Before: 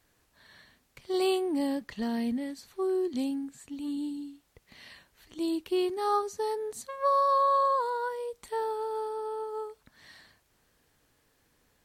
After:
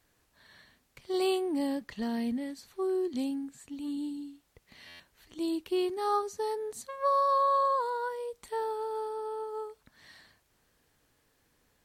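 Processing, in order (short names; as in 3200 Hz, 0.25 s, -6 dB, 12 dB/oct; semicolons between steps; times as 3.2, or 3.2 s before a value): stuck buffer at 4.87, samples 512, times 10; gain -1.5 dB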